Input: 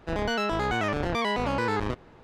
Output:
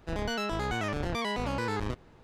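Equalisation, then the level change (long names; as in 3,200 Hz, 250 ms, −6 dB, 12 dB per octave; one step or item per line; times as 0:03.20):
low-shelf EQ 200 Hz +6 dB
high-shelf EQ 4,600 Hz +9.5 dB
−6.5 dB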